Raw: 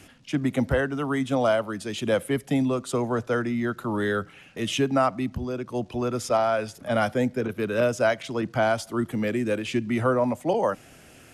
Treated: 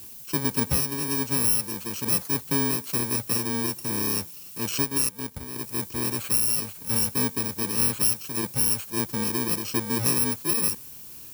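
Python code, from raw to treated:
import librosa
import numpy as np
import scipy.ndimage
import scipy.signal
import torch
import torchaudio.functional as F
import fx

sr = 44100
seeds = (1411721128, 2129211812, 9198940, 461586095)

y = fx.bit_reversed(x, sr, seeds[0], block=64)
y = fx.dmg_noise_colour(y, sr, seeds[1], colour='violet', level_db=-42.0)
y = fx.power_curve(y, sr, exponent=1.4, at=(4.82, 5.56))
y = y * 10.0 ** (-1.0 / 20.0)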